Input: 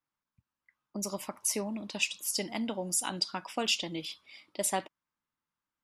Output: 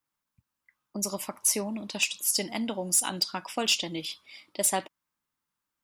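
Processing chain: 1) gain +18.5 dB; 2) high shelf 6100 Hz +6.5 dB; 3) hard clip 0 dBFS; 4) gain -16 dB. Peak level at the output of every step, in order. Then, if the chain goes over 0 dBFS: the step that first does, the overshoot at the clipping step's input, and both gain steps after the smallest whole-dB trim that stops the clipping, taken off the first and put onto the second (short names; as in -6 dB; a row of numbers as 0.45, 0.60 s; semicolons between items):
+4.0, +8.0, 0.0, -16.0 dBFS; step 1, 8.0 dB; step 1 +10.5 dB, step 4 -8 dB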